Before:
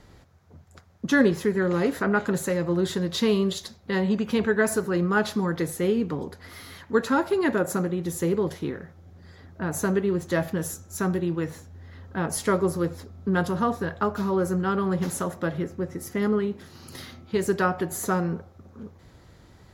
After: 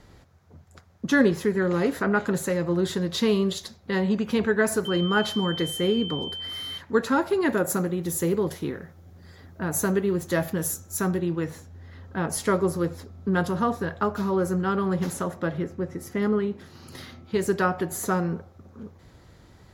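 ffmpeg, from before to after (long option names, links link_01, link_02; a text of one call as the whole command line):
ffmpeg -i in.wav -filter_complex "[0:a]asettb=1/sr,asplit=3[link_01][link_02][link_03];[link_01]atrim=end=4.854[link_04];[link_02]atrim=start=4.85:end=6.78,asetpts=PTS-STARTPTS,afade=type=in:duration=0.004:curve=qsin,afade=type=out:start_time=1.926:duration=0.004:curve=qsin,aeval=exprs='val(0)+0.0251*sin(2*PI*3100*n/s)':channel_layout=same[link_05];[link_03]atrim=start=6.776[link_06];[link_04][link_05]acrossfade=duration=0.004:curve1=hsin:curve2=qsin[link_07];[link_07][link_06]acrossfade=duration=0.004:curve1=qsin:curve2=hsin,asettb=1/sr,asplit=3[link_08][link_09][link_10];[link_08]atrim=end=7.494[link_11];[link_09]atrim=start=7.49:end=11.11,asetpts=PTS-STARTPTS,afade=type=in:duration=0.004:curve=qsin,afade=type=out:start_time=3.616:duration=0.004:curve=qsin,highshelf=frequency=9800:gain=11.5[link_12];[link_10]atrim=start=11.106[link_13];[link_11][link_12]acrossfade=duration=0.004:curve1=hsin:curve2=qsin[link_14];[link_14][link_13]acrossfade=duration=0.004:curve1=qsin:curve2=hsin,asettb=1/sr,asplit=3[link_15][link_16][link_17];[link_15]atrim=end=15.134[link_18];[link_16]atrim=start=15.13:end=17.25,asetpts=PTS-STARTPTS,afade=type=in:duration=0.004:curve=qsin,afade=type=out:start_time=2.116:duration=0.004:curve=qsin,highshelf=frequency=5700:gain=-5.5[link_19];[link_17]atrim=start=17.246[link_20];[link_18][link_19]acrossfade=duration=0.004:curve1=hsin:curve2=qsin[link_21];[link_21][link_20]acrossfade=duration=0.004:curve1=qsin:curve2=hsin" out.wav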